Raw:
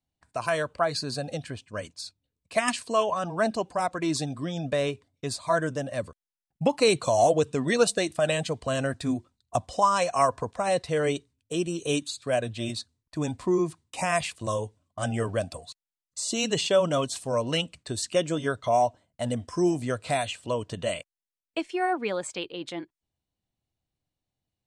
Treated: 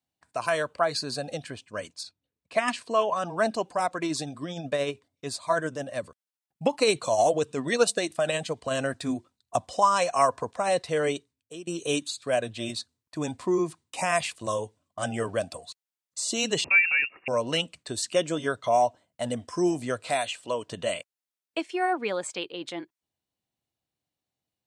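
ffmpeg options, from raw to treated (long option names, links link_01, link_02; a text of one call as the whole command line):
ffmpeg -i in.wav -filter_complex "[0:a]asettb=1/sr,asplit=3[link_01][link_02][link_03];[link_01]atrim=end=2.034[link_04];[link_02]atrim=start=2.03:end=3.12,asetpts=PTS-STARTPTS,afade=type=in:duration=0.004:curve=qsin,afade=type=out:start_time=1.086:duration=0.004:curve=qsin,aemphasis=mode=reproduction:type=50kf[link_05];[link_03]atrim=start=3.116[link_06];[link_04][link_05]acrossfade=duration=0.004:curve1=hsin:curve2=qsin[link_07];[link_07][link_06]acrossfade=duration=0.004:curve1=qsin:curve2=hsin,asettb=1/sr,asplit=3[link_08][link_09][link_10];[link_08]atrim=end=4.054[link_11];[link_09]atrim=start=4.05:end=8.71,asetpts=PTS-STARTPTS,afade=type=in:duration=0.004:curve=qsin,afade=type=out:start_time=4.656:duration=0.004:curve=qsin,tremolo=f=13:d=0.36[link_12];[link_10]atrim=start=8.706[link_13];[link_11][link_12]acrossfade=duration=0.004:curve1=hsin:curve2=qsin[link_14];[link_14][link_13]acrossfade=duration=0.004:curve1=qsin:curve2=hsin,asettb=1/sr,asplit=3[link_15][link_16][link_17];[link_15]atrim=end=16.644[link_18];[link_16]atrim=start=16.64:end=17.28,asetpts=PTS-STARTPTS,afade=type=in:duration=0.004:curve=qsin,afade=type=out:start_time=0.636:duration=0.004:curve=qsin,lowpass=frequency=2500:width_type=q:width=0.5098,lowpass=frequency=2500:width_type=q:width=0.6013,lowpass=frequency=2500:width_type=q:width=0.9,lowpass=frequency=2500:width_type=q:width=2.563,afreqshift=-2900[link_19];[link_17]atrim=start=17.276[link_20];[link_18][link_19]acrossfade=duration=0.004:curve1=hsin:curve2=qsin[link_21];[link_21][link_20]acrossfade=duration=0.004:curve1=qsin:curve2=hsin,asettb=1/sr,asplit=3[link_22][link_23][link_24];[link_22]atrim=end=20.044[link_25];[link_23]atrim=start=20.04:end=20.68,asetpts=PTS-STARTPTS,afade=type=in:duration=0.004:curve=qsin,afade=type=out:start_time=0.636:duration=0.004:curve=qsin,lowshelf=frequency=180:gain=-9.5[link_26];[link_24]atrim=start=20.676[link_27];[link_25][link_26]acrossfade=duration=0.004:curve1=hsin:curve2=qsin[link_28];[link_28][link_27]acrossfade=duration=0.004:curve1=qsin:curve2=hsin,asplit=2[link_29][link_30];[link_29]atrim=end=11.67,asetpts=PTS-STARTPTS,afade=type=out:start_time=11.05:duration=0.62:silence=0.125893[link_31];[link_30]atrim=start=11.67,asetpts=PTS-STARTPTS,afade=type=in:duration=0.004:curve=hsin:silence=0.125893[link_32];[link_31][link_32]concat=n=2:v=0:a=1,highpass=frequency=240:poles=1,volume=1dB" out.wav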